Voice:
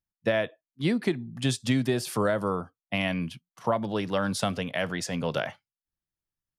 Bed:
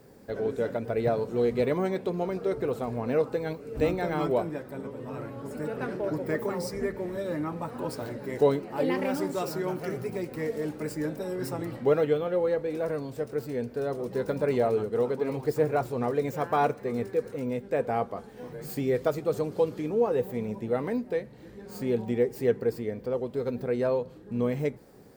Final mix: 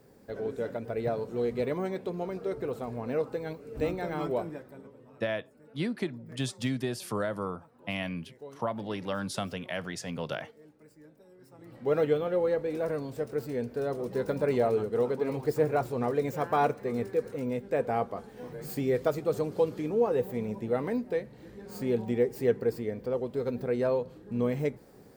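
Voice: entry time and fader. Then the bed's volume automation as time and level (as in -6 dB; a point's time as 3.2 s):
4.95 s, -6.0 dB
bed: 4.48 s -4.5 dB
5.4 s -23.5 dB
11.49 s -23.5 dB
11.98 s -1 dB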